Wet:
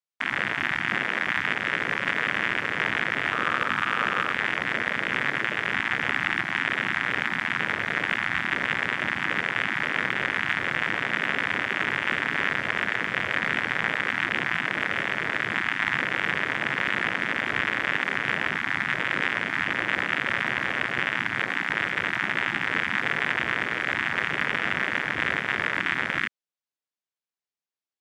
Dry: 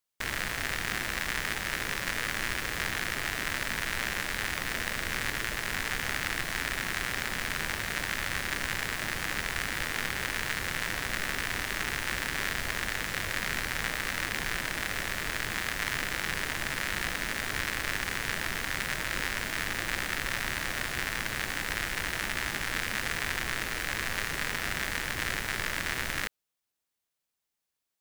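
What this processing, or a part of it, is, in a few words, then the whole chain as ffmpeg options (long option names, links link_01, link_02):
over-cleaned archive recording: -filter_complex "[0:a]highpass=150,lowpass=6100,afwtdn=0.02,asettb=1/sr,asplit=3[link_01][link_02][link_03];[link_01]atrim=end=3.304[link_04];[link_02]atrim=start=3.3:end=4.32,asetpts=PTS-STARTPTS,afade=type=in:duration=0.004:curve=qsin,afade=type=out:start_time=1.016:duration=0.004:curve=qsin,equalizer=frequency=500:width_type=o:width=0.33:gain=4,equalizer=frequency=1250:width_type=o:width=0.33:gain=10,equalizer=frequency=2000:width_type=o:width=0.33:gain=-5,equalizer=frequency=16000:width_type=o:width=0.33:gain=6[link_05];[link_03]atrim=start=4.316[link_06];[link_04][link_05]acrossfade=duration=0.004:curve1=hsin:curve2=qsin[link_07];[link_07][link_06]acrossfade=duration=0.004:curve1=qsin:curve2=hsin,volume=8dB"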